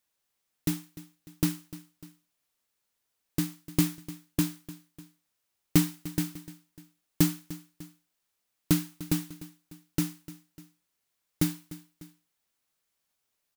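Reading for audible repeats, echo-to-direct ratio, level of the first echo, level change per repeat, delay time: 2, -16.0 dB, -17.0 dB, -5.5 dB, 299 ms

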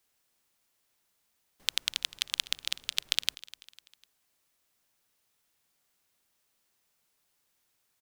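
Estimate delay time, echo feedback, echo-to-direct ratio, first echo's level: 250 ms, 44%, -18.0 dB, -19.0 dB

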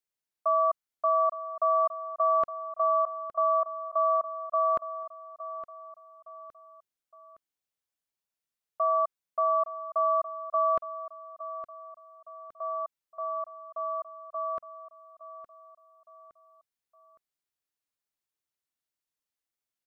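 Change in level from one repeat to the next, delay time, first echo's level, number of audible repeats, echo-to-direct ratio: -7.5 dB, 864 ms, -13.0 dB, 3, -12.0 dB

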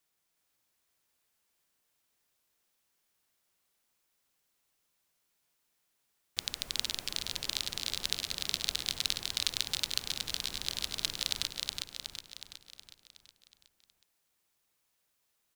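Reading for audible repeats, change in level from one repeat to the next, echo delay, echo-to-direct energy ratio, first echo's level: 6, -5.5 dB, 368 ms, -1.5 dB, -3.0 dB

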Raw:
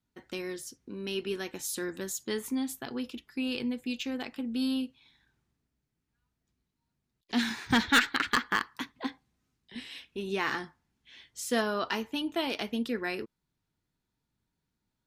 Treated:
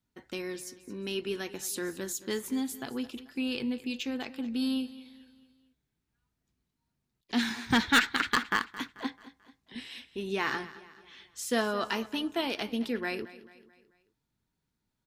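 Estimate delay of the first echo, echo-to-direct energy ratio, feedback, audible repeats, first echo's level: 219 ms, -16.0 dB, 46%, 3, -17.0 dB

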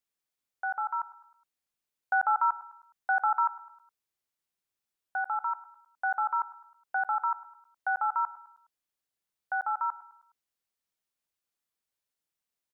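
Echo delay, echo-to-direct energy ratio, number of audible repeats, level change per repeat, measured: 104 ms, -18.0 dB, 3, -6.0 dB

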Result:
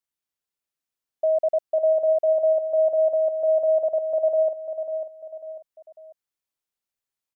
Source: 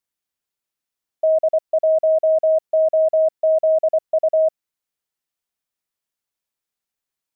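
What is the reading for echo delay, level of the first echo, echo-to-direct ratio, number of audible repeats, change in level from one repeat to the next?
546 ms, -8.5 dB, -8.0 dB, 3, -8.0 dB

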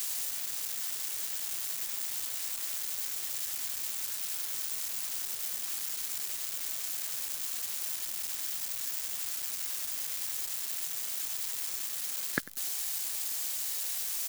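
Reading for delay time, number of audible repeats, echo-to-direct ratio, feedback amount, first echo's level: 97 ms, 2, -18.5 dB, 33%, -19.0 dB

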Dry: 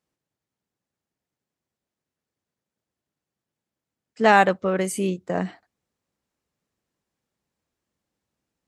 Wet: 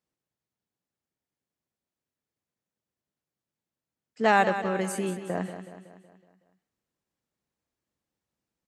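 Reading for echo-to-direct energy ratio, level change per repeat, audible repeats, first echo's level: -9.0 dB, -5.5 dB, 5, -10.5 dB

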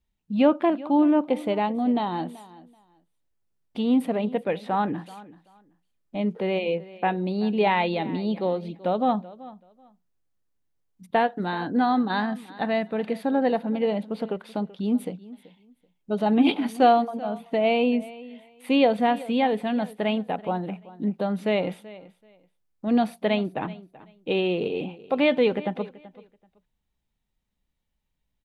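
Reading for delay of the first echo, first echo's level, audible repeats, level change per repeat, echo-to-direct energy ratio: 382 ms, -19.0 dB, 2, -14.0 dB, -19.0 dB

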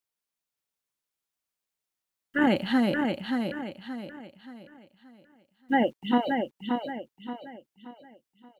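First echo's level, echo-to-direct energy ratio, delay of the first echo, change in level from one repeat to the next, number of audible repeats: -5.0 dB, -4.5 dB, 577 ms, -8.5 dB, 4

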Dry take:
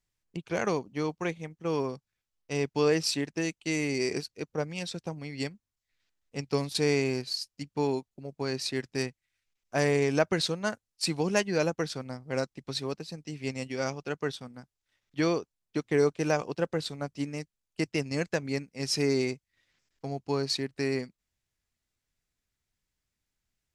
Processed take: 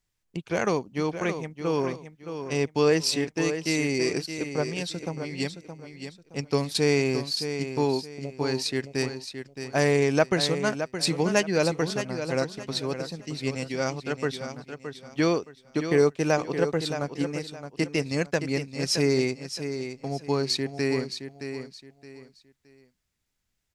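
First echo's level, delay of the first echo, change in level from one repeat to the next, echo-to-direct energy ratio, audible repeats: -9.0 dB, 619 ms, -11.0 dB, -8.5 dB, 3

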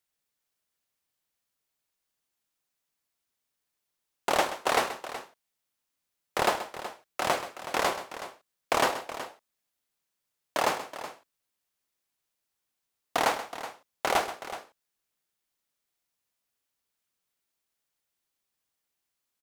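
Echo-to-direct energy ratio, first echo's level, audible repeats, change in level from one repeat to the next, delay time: -10.0 dB, -13.0 dB, 2, no regular repeats, 130 ms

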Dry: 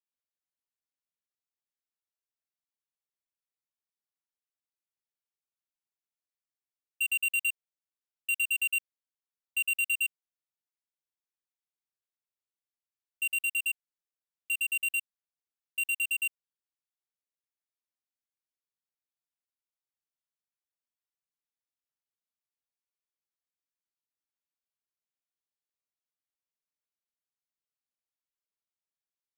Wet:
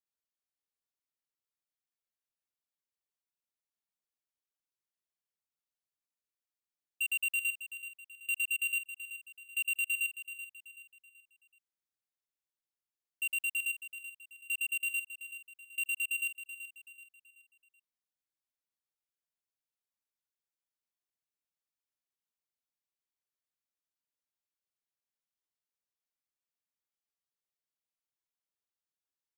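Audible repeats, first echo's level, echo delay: 3, -11.5 dB, 380 ms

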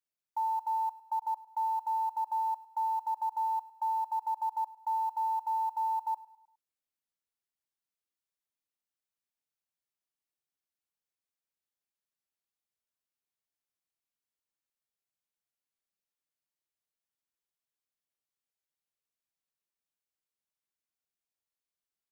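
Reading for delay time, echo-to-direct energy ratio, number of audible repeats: 103 ms, -18.0 dB, 3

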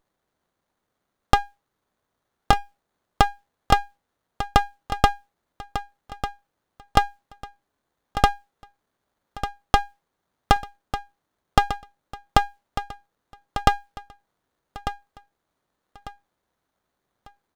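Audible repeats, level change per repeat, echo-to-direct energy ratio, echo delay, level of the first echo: 3, -10.5 dB, -10.5 dB, 1197 ms, -11.0 dB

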